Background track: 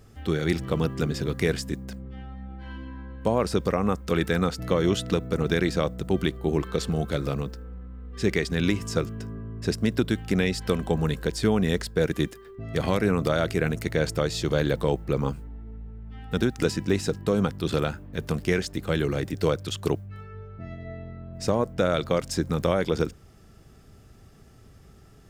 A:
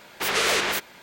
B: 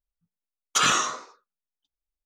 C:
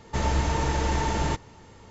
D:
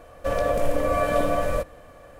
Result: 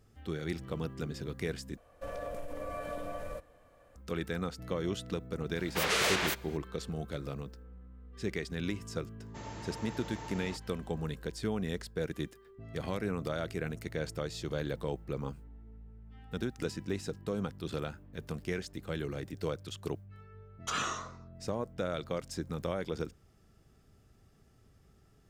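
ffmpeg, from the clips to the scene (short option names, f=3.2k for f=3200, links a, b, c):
-filter_complex "[0:a]volume=-11.5dB[a];[4:a]acompressor=threshold=-26dB:ratio=6:attack=55:release=42:knee=6:detection=peak[b];[3:a]highpass=160[c];[2:a]highshelf=f=2.2k:g=-6.5[d];[a]asplit=2[e][f];[e]atrim=end=1.774[g];[b]atrim=end=2.19,asetpts=PTS-STARTPTS,volume=-14.5dB[h];[f]atrim=start=3.956[i];[1:a]atrim=end=1.02,asetpts=PTS-STARTPTS,volume=-6.5dB,afade=t=in:d=0.004:c=hsin,afade=t=out:st=1.016:d=0.004:c=hsin,adelay=5550[j];[c]atrim=end=1.9,asetpts=PTS-STARTPTS,volume=-17dB,afade=t=in:d=0.004:c=hsin,afade=t=out:st=1.896:d=0.004:c=hsin,adelay=9210[k];[d]atrim=end=2.25,asetpts=PTS-STARTPTS,volume=-10dB,afade=t=in:d=0.004:c=hsin,afade=t=out:st=2.246:d=0.004:c=hsin,adelay=19920[l];[g][h]acrossfade=d=0.004:c1=hsin:c2=hsin[m];[m][i]acrossfade=d=0.004:c1=hsin:c2=hsin[n];[n][j][k][l]amix=inputs=4:normalize=0"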